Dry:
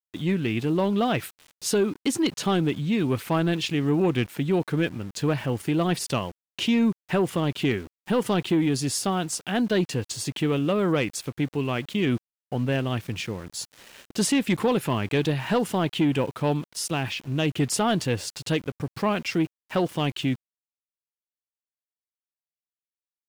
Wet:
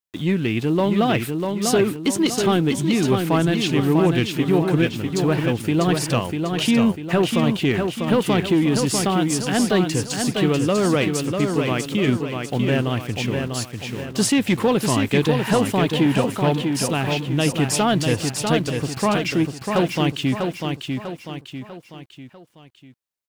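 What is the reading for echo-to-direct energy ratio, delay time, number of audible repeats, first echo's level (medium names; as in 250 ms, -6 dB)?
-4.0 dB, 646 ms, 4, -5.0 dB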